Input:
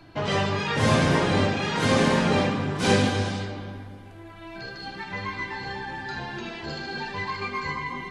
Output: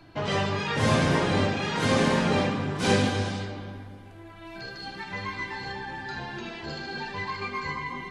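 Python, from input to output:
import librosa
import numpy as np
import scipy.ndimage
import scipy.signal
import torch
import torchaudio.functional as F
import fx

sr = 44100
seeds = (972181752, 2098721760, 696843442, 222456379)

y = fx.high_shelf(x, sr, hz=5400.0, db=5.0, at=(4.45, 5.72))
y = F.gain(torch.from_numpy(y), -2.0).numpy()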